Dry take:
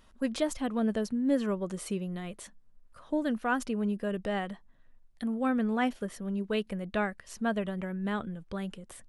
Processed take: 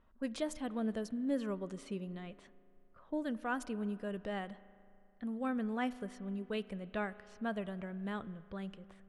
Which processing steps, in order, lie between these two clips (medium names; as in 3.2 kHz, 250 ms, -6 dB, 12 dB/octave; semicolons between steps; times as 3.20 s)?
spring tank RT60 2.8 s, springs 36 ms, chirp 45 ms, DRR 17 dB; level-controlled noise filter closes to 1.6 kHz, open at -27.5 dBFS; trim -7.5 dB